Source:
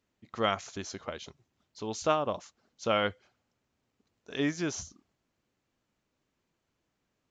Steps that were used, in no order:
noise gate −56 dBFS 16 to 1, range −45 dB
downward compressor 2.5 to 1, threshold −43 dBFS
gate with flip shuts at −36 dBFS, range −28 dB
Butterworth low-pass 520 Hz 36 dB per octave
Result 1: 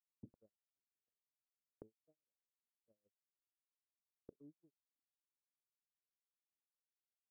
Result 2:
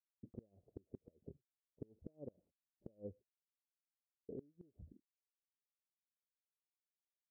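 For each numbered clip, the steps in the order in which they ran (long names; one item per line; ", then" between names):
gate with flip, then downward compressor, then Butterworth low-pass, then noise gate
downward compressor, then noise gate, then Butterworth low-pass, then gate with flip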